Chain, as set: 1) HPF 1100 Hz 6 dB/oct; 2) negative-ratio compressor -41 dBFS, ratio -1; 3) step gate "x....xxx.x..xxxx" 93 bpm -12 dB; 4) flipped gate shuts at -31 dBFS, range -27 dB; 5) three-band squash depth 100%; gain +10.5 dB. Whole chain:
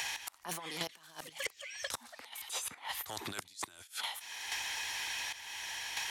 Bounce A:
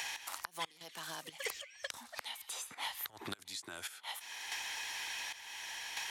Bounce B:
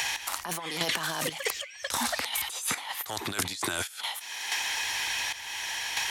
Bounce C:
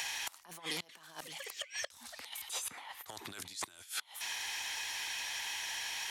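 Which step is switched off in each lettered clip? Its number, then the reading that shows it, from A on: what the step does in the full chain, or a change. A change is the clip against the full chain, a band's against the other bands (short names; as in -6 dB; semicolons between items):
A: 2, momentary loudness spread change -2 LU; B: 4, momentary loudness spread change -2 LU; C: 3, 8 kHz band +3.5 dB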